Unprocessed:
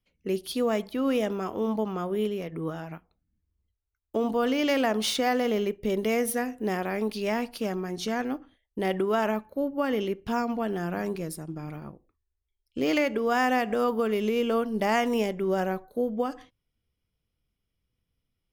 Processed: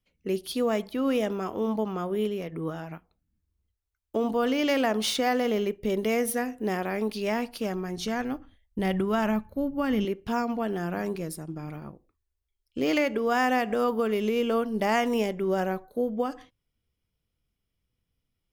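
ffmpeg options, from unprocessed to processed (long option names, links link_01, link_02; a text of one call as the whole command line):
ffmpeg -i in.wav -filter_complex "[0:a]asettb=1/sr,asplit=3[link_01][link_02][link_03];[link_01]atrim=end=7.504[link_04];[link_02]atrim=start=7.5:end=10.05,asetpts=PTS-STARTPTS,afade=type=in:duration=0.004:curve=qsin,afade=type=out:start_time=2.546:duration=0.004:curve=qsin,asubboost=boost=10:cutoff=160[link_05];[link_03]atrim=start=10.046[link_06];[link_04][link_05]acrossfade=duration=0.004:curve1=hsin:curve2=qsin[link_07];[link_07][link_06]acrossfade=duration=0.004:curve1=qsin:curve2=hsin" out.wav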